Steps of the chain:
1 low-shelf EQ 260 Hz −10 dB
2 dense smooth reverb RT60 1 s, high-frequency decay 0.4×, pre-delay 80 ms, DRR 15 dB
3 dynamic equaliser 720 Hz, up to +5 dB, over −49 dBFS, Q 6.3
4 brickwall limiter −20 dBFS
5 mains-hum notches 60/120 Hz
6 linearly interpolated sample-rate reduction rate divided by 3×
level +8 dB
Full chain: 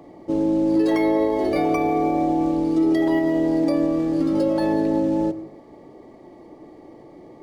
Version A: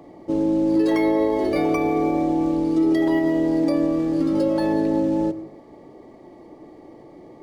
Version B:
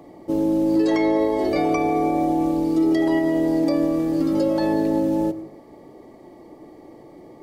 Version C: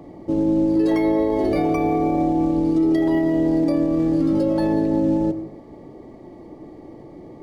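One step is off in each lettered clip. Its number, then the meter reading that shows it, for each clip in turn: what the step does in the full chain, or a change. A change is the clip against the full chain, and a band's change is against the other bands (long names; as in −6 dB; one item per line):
3, 1 kHz band −2.5 dB
6, 4 kHz band +2.0 dB
1, 125 Hz band +5.5 dB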